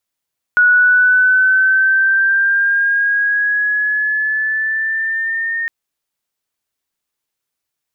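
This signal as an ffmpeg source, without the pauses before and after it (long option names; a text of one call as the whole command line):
ffmpeg -f lavfi -i "aevalsrc='pow(10,(-7-10*t/5.11)/20)*sin(2*PI*1460*5.11/(4*log(2)/12)*(exp(4*log(2)/12*t/5.11)-1))':duration=5.11:sample_rate=44100" out.wav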